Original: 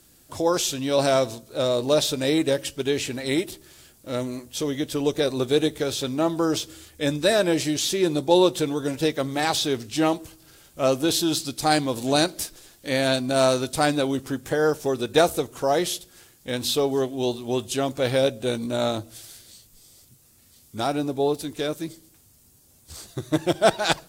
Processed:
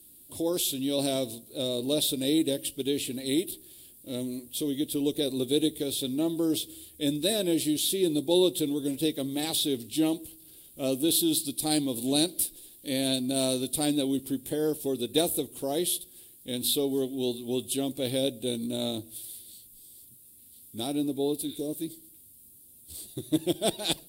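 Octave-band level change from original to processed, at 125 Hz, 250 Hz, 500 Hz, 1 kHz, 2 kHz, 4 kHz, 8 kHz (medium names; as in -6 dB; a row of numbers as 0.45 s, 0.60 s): -7.5 dB, -2.0 dB, -7.5 dB, -14.5 dB, -14.0 dB, -3.0 dB, -0.5 dB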